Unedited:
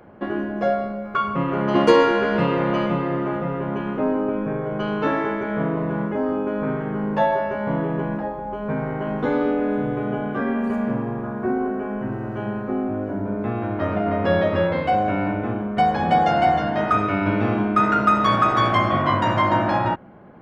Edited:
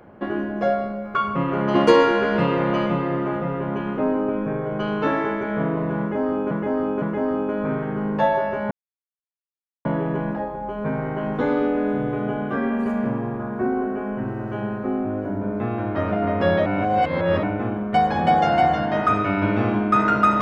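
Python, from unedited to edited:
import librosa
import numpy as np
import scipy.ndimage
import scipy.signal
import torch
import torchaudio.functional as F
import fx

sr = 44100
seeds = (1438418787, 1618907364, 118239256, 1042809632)

y = fx.edit(x, sr, fx.repeat(start_s=6.0, length_s=0.51, count=3),
    fx.insert_silence(at_s=7.69, length_s=1.14),
    fx.reverse_span(start_s=14.5, length_s=0.77), tone=tone)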